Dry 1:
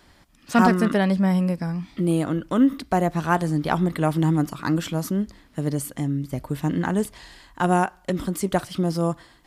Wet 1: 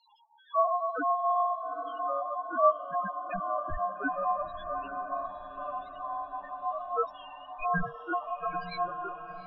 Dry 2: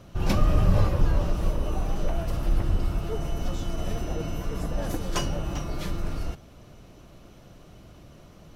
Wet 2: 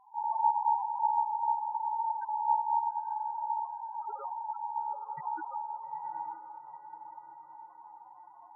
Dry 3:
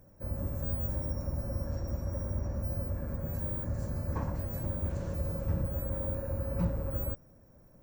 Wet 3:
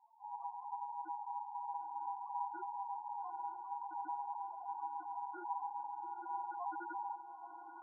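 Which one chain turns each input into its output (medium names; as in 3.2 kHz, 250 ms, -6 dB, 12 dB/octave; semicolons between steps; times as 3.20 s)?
resonant high shelf 1.7 kHz +6 dB, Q 3; band-stop 3.5 kHz, Q 13; in parallel at -3 dB: compression, threshold -35 dBFS; on the sum: LFO low-pass saw down 0.71 Hz 380–5700 Hz; chorus voices 4, 1.4 Hz, delay 24 ms, depth 3 ms; ring modulator 890 Hz; loudest bins only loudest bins 2; on a send: echo that smears into a reverb 893 ms, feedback 52%, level -10 dB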